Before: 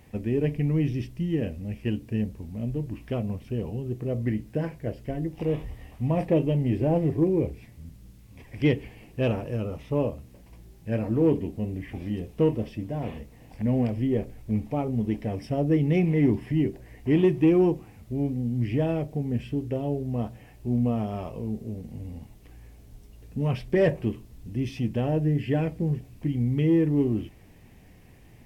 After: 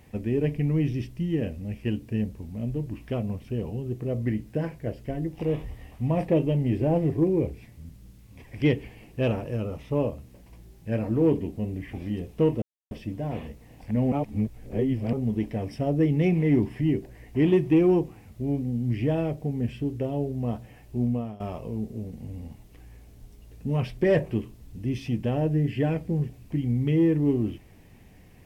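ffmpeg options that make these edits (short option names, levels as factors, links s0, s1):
-filter_complex "[0:a]asplit=5[s0][s1][s2][s3][s4];[s0]atrim=end=12.62,asetpts=PTS-STARTPTS,afade=t=out:st=12.616:d=0.004:c=hsin,apad=pad_dur=0.29[s5];[s1]atrim=start=12.62:end=13.832,asetpts=PTS-STARTPTS,afade=t=in:d=0.004:c=hsin[s6];[s2]atrim=start=13.828:end=14.842,asetpts=PTS-STARTPTS,areverse[s7];[s3]atrim=start=14.838:end=21.11,asetpts=PTS-STARTPTS,afade=t=out:st=5.892:d=0.38:silence=0.133352[s8];[s4]atrim=start=21.11,asetpts=PTS-STARTPTS,afade=t=in:d=0.004:c=hsin:silence=0.133352[s9];[s5][s6]concat=n=2:v=0:a=1[s10];[s10][s7]acrossfade=d=0.004:c1=hsin:c2=hsin[s11];[s8][s9]concat=n=2:v=0:a=1[s12];[s11][s12]acrossfade=d=0.004:c1=hsin:c2=hsin"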